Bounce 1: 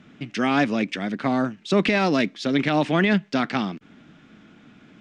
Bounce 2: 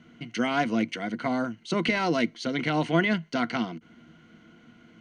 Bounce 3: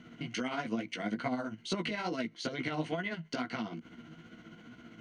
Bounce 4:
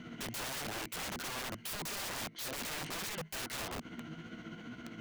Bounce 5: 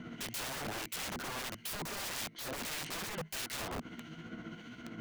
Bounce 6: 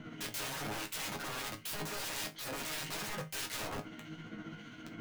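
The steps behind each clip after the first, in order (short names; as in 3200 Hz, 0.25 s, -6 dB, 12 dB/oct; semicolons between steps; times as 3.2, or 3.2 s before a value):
ripple EQ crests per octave 1.9, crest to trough 11 dB; gain -5 dB
compressor 6:1, threshold -34 dBFS, peak gain reduction 16 dB; chorus 2.3 Hz, delay 15.5 ms, depth 3.7 ms; tremolo 15 Hz, depth 46%; gain +6.5 dB
compressor 2:1, threshold -39 dBFS, peak gain reduction 6.5 dB; wrapped overs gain 40 dB; gain +5 dB
harmonic tremolo 1.6 Hz, depth 50%, crossover 1900 Hz; gain +2.5 dB
resonator bank G#2 sus4, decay 0.2 s; gain +11 dB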